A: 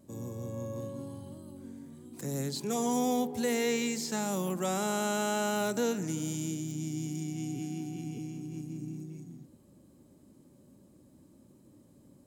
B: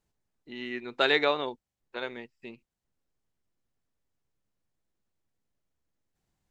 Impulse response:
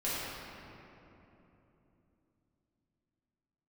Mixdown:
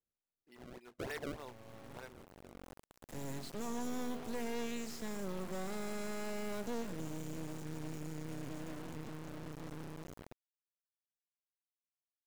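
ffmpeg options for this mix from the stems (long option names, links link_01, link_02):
-filter_complex "[0:a]acrusher=bits=4:dc=4:mix=0:aa=0.000001,adelay=900,volume=-3.5dB[link_01];[1:a]asplit=2[link_02][link_03];[link_03]highpass=frequency=720:poles=1,volume=12dB,asoftclip=type=tanh:threshold=-8dB[link_04];[link_02][link_04]amix=inputs=2:normalize=0,lowpass=frequency=2700:poles=1,volume=-6dB,acrusher=samples=29:mix=1:aa=0.000001:lfo=1:lforange=46.4:lforate=3.3,volume=-19dB,asplit=2[link_05][link_06];[link_06]apad=whole_len=580782[link_07];[link_01][link_07]sidechaincompress=threshold=-50dB:ratio=12:attack=16:release=926[link_08];[link_08][link_05]amix=inputs=2:normalize=0,asoftclip=type=tanh:threshold=-28.5dB,highshelf=frequency=3600:gain=-6.5"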